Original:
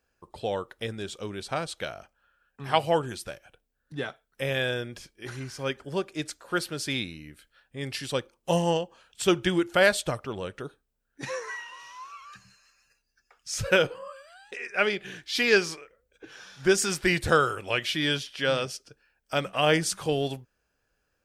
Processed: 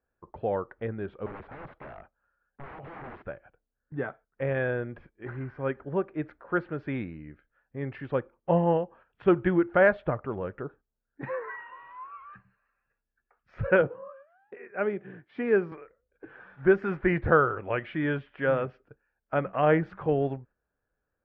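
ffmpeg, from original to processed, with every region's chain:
-filter_complex "[0:a]asettb=1/sr,asplit=3[s0][s1][s2];[s0]atrim=end=1.264[s3];[s1]atrim=start=1.26:end=3.24,asetpts=PTS-STARTPTS,afade=t=in:d=0.004:c=qsin,afade=t=out:st=1.976:d=0.004:c=qsin,acompressor=threshold=0.0282:ratio=10:attack=3.2:release=140:knee=1:detection=peak,aeval=exprs='(mod(59.6*val(0)+1,2)-1)/59.6':c=same[s4];[s2]atrim=start=3.236[s5];[s3][s4]acrossfade=d=0.004:c1=hsin:c2=qsin[s6];[s6][s5]acrossfade=d=0.004:c1=qsin:c2=hsin,asettb=1/sr,asplit=3[s7][s8][s9];[s7]atrim=end=13.814[s10];[s8]atrim=start=13.81:end=15.72,asetpts=PTS-STARTPTS,afade=t=in:d=0.004:c=qsin,afade=t=out:st=1.906:d=0.004:c=qsin,highpass=f=95:w=0.5412,highpass=f=95:w=1.3066,equalizer=f=2400:w=0.36:g=-8[s11];[s9]atrim=start=15.716[s12];[s10][s11]acrossfade=d=0.004:c1=hsin:c2=qsin[s13];[s13][s12]acrossfade=d=0.004:c1=qsin:c2=hsin,aemphasis=mode=reproduction:type=75kf,agate=range=0.447:threshold=0.00224:ratio=16:detection=peak,lowpass=f=1900:w=0.5412,lowpass=f=1900:w=1.3066,volume=1.19"

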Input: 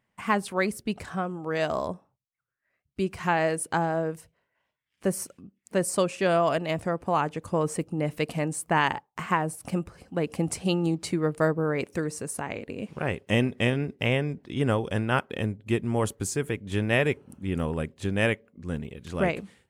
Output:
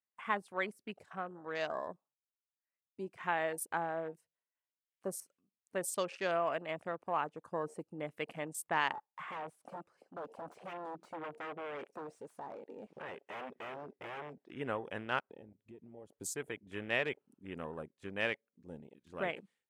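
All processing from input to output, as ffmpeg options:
-filter_complex "[0:a]asettb=1/sr,asplit=3[s0][s1][s2];[s0]atrim=end=8.944[s3];[s1]atrim=start=8.94:end=14.52,asetpts=PTS-STARTPTS,afade=t=in:d=0.004:c=qsin,afade=t=out:st=5.576:d=0.004:c=qsin,bass=f=250:g=0,treble=f=4000:g=8,aeval=exprs='0.0531*(abs(mod(val(0)/0.0531+3,4)-2)-1)':c=same,asplit=2[s4][s5];[s5]highpass=f=720:p=1,volume=7.08,asoftclip=type=tanh:threshold=0.0562[s6];[s4][s6]amix=inputs=2:normalize=0,lowpass=f=1100:p=1,volume=0.501[s7];[s2]atrim=start=14.516[s8];[s3][s7]acrossfade=d=0.004:c1=hsin:c2=qsin[s9];[s9][s8]acrossfade=d=0.004:c1=qsin:c2=hsin,asettb=1/sr,asplit=3[s10][s11][s12];[s10]atrim=end=15.194[s13];[s11]atrim=start=15.19:end=16.13,asetpts=PTS-STARTPTS,afade=t=in:d=0.004:c=qsin,afade=t=out:st=0.936:d=0.004:c=qsin,highshelf=f=5500:g=-11.5,acompressor=threshold=0.0224:ratio=6:attack=3.2:release=140:knee=1:detection=peak[s14];[s12]atrim=start=16.126[s15];[s13][s14]acrossfade=d=0.004:c1=hsin:c2=qsin[s16];[s16][s15]acrossfade=d=0.004:c1=qsin:c2=hsin,highpass=f=660:p=1,afwtdn=0.01,volume=0.447"

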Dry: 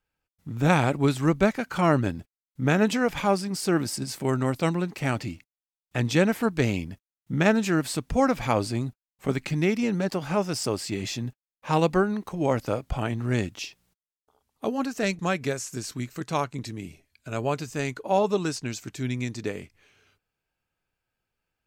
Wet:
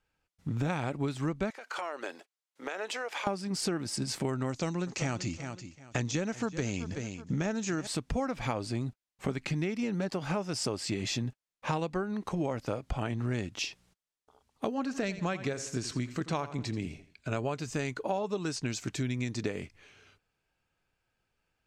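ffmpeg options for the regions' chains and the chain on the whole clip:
-filter_complex "[0:a]asettb=1/sr,asplit=3[s0][s1][s2];[s0]atrim=end=1.504[s3];[s1]atrim=start=1.5:end=3.27,asetpts=PTS-STARTPTS,afade=t=in:d=0.004:c=qsin,afade=t=out:st=1.766:d=0.004:c=qsin,highpass=f=450:w=0.5412,highpass=f=450:w=1.3066,acompressor=threshold=0.0178:ratio=12:attack=3.2:release=140:knee=1:detection=peak[s4];[s2]atrim=start=3.266[s5];[s3][s4]acrossfade=d=0.004:c1=hsin:c2=qsin[s6];[s6][s5]acrossfade=d=0.004:c1=qsin:c2=hsin,asettb=1/sr,asplit=3[s7][s8][s9];[s7]atrim=end=4.494[s10];[s8]atrim=start=4.49:end=7.87,asetpts=PTS-STARTPTS,afade=t=in:d=0.004:c=qsin,afade=t=out:st=3.376:d=0.004:c=qsin,deesser=0.8,lowpass=f=6600:t=q:w=5.5,aecho=1:1:377|754:0.141|0.0311,atrim=end_sample=149058[s11];[s9]atrim=start=7.866[s12];[s10][s11]acrossfade=d=0.004:c1=hsin:c2=qsin[s13];[s13][s12]acrossfade=d=0.004:c1=qsin:c2=hsin,asettb=1/sr,asplit=3[s14][s15][s16];[s14]atrim=end=14.744[s17];[s15]atrim=start=14.74:end=17.37,asetpts=PTS-STARTPTS,afade=t=in:d=0.004:c=qsin,afade=t=out:st=2.626:d=0.004:c=qsin,highshelf=f=9700:g=-10.5,aecho=1:1:84|168|252:0.158|0.0571|0.0205,atrim=end_sample=115983[s18];[s16]atrim=start=17.366[s19];[s17][s18]acrossfade=d=0.004:c1=hsin:c2=qsin[s20];[s20][s19]acrossfade=d=0.004:c1=qsin:c2=hsin,lowpass=8600,acompressor=threshold=0.0251:ratio=12,volume=1.5"

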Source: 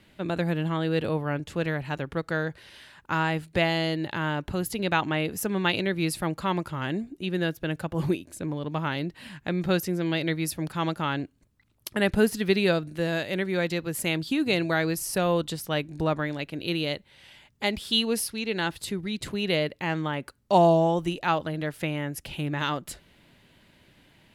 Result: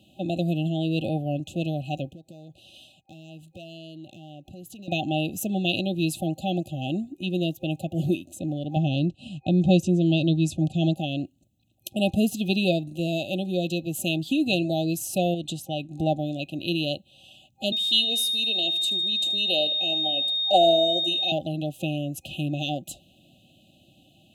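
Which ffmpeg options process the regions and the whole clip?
-filter_complex "[0:a]asettb=1/sr,asplit=3[s0][s1][s2];[s0]atrim=end=2.074[s3];[s1]atrim=start=2.07:end=4.88,asetpts=PTS-STARTPTS,afade=t=in:d=0.004:c=qsin,afade=t=out:st=2.806:d=0.004:c=qsin,agate=range=0.0224:threshold=0.00355:ratio=3:release=100:detection=peak,acompressor=threshold=0.00794:ratio=4:attack=3.2:release=140:knee=1:detection=peak,asoftclip=type=hard:threshold=0.0141[s4];[s2]atrim=start=4.876[s5];[s3][s4]acrossfade=d=0.004:c1=hsin:c2=qsin[s6];[s6][s5]acrossfade=d=0.004:c1=qsin:c2=hsin,asettb=1/sr,asplit=3[s7][s8][s9];[s7]atrim=end=8.764[s10];[s8]atrim=start=8.76:end=10.96,asetpts=PTS-STARTPTS,afade=t=in:d=0.004:c=qsin,afade=t=out:st=2.196:d=0.004:c=qsin,lowpass=f=8700:w=0.5412,lowpass=f=8700:w=1.3066,agate=range=0.0224:threshold=0.00708:ratio=3:release=100:detection=peak,lowshelf=f=200:g=11[s11];[s9]atrim=start=10.956[s12];[s10][s11]acrossfade=d=0.004:c1=hsin:c2=qsin[s13];[s13][s12]acrossfade=d=0.004:c1=qsin:c2=hsin,asettb=1/sr,asplit=3[s14][s15][s16];[s14]atrim=end=15.344[s17];[s15]atrim=start=15.34:end=15.91,asetpts=PTS-STARTPTS,afade=t=in:d=0.004:c=qsin,afade=t=out:st=0.566:d=0.004:c=qsin,agate=range=0.0224:threshold=0.0112:ratio=3:release=100:detection=peak,lowpass=11000,acompressor=threshold=0.0447:ratio=2.5:attack=3.2:release=140:knee=1:detection=peak[s18];[s16]atrim=start=15.906[s19];[s17][s18]acrossfade=d=0.004:c1=hsin:c2=qsin[s20];[s20][s19]acrossfade=d=0.004:c1=qsin:c2=hsin,asettb=1/sr,asplit=3[s21][s22][s23];[s21]atrim=end=17.724[s24];[s22]atrim=start=17.72:end=21.32,asetpts=PTS-STARTPTS,afade=t=in:d=0.004:c=qsin,afade=t=out:st=3.596:d=0.004:c=qsin,aeval=exprs='val(0)+0.0501*sin(2*PI*3700*n/s)':c=same,highpass=430,aecho=1:1:77|154|231|308:0.141|0.0706|0.0353|0.0177,atrim=end_sample=158760[s25];[s23]atrim=start=21.316[s26];[s24][s25]acrossfade=d=0.004:c1=hsin:c2=qsin[s27];[s27][s26]acrossfade=d=0.004:c1=qsin:c2=hsin,highpass=89,afftfilt=real='re*(1-between(b*sr/4096,790,2500))':imag='im*(1-between(b*sr/4096,790,2500))':win_size=4096:overlap=0.75,superequalizer=7b=0.282:9b=1.78:14b=0.398:16b=0.631,volume=1.33"

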